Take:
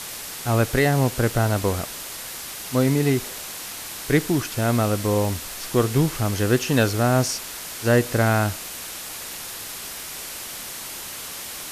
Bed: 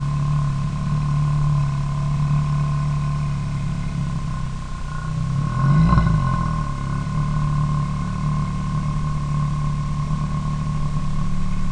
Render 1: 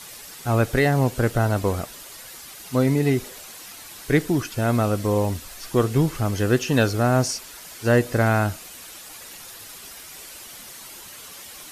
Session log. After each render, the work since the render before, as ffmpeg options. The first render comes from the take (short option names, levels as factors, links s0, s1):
-af "afftdn=nr=9:nf=-35"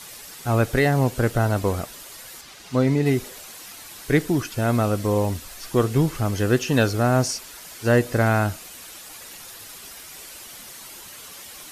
-filter_complex "[0:a]asettb=1/sr,asplit=3[s0][s1][s2];[s0]atrim=end=2.414[s3];[s1]atrim=start=2.41:end=3.06,asetpts=PTS-STARTPTS,afade=t=in:d=0.004:c=qsin,afade=t=out:st=0.646:d=0.004:c=qsin,acrossover=split=7100[s4][s5];[s5]acompressor=threshold=0.00178:ratio=4:attack=1:release=60[s6];[s4][s6]amix=inputs=2:normalize=0[s7];[s2]atrim=start=3.056[s8];[s3][s7]acrossfade=d=0.004:c1=hsin:c2=qsin[s9];[s9][s8]acrossfade=d=0.004:c1=qsin:c2=hsin"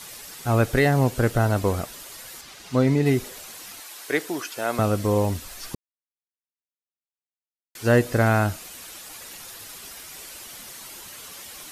-filter_complex "[0:a]asettb=1/sr,asplit=3[s0][s1][s2];[s0]atrim=end=3.804[s3];[s1]atrim=start=3.8:end=4.79,asetpts=PTS-STARTPTS,afade=t=in:d=0.004:c=qsin,afade=t=out:st=0.986:d=0.004:c=qsin,highpass=460[s4];[s2]atrim=start=4.786[s5];[s3][s4]acrossfade=d=0.004:c1=hsin:c2=qsin[s6];[s6][s5]acrossfade=d=0.004:c1=qsin:c2=hsin,asplit=3[s7][s8][s9];[s7]atrim=end=5.75,asetpts=PTS-STARTPTS,afade=t=out:st=5.746:d=0.004:c=hsin[s10];[s8]atrim=start=5.75:end=7.75,asetpts=PTS-STARTPTS,volume=0[s11];[s9]atrim=start=7.75,asetpts=PTS-STARTPTS,afade=t=in:d=0.004:c=hsin[s12];[s10][s11][s12]concat=n=3:v=0:a=1"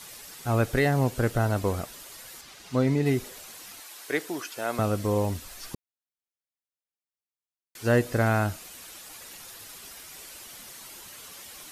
-af "volume=0.631"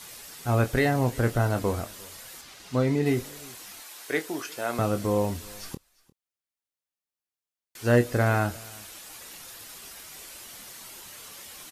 -filter_complex "[0:a]asplit=2[s0][s1];[s1]adelay=25,volume=0.335[s2];[s0][s2]amix=inputs=2:normalize=0,aecho=1:1:351:0.0631"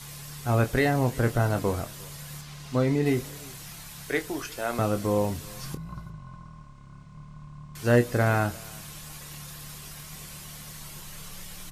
-filter_complex "[1:a]volume=0.0631[s0];[0:a][s0]amix=inputs=2:normalize=0"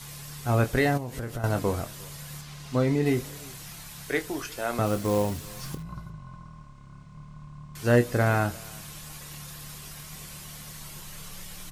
-filter_complex "[0:a]asettb=1/sr,asplit=3[s0][s1][s2];[s0]atrim=end=0.974[s3];[s1]atrim=start=0.97:end=1.44,asetpts=PTS-STARTPTS,afade=t=in:d=0.004:c=qsin,afade=t=out:st=0.466:d=0.004:c=qsin,acompressor=threshold=0.0355:ratio=12:attack=3.2:release=140:knee=1:detection=peak[s4];[s2]atrim=start=1.436[s5];[s3][s4]acrossfade=d=0.004:c1=hsin:c2=qsin[s6];[s6][s5]acrossfade=d=0.004:c1=qsin:c2=hsin,asettb=1/sr,asplit=3[s7][s8][s9];[s7]atrim=end=4.864[s10];[s8]atrim=start=4.86:end=5.83,asetpts=PTS-STARTPTS,afade=t=in:d=0.004:c=qsin,afade=t=out:st=0.966:d=0.004:c=qsin,acrusher=bits=4:mode=log:mix=0:aa=0.000001[s11];[s9]atrim=start=5.826[s12];[s10][s11]acrossfade=d=0.004:c1=hsin:c2=qsin[s13];[s13][s12]acrossfade=d=0.004:c1=qsin:c2=hsin"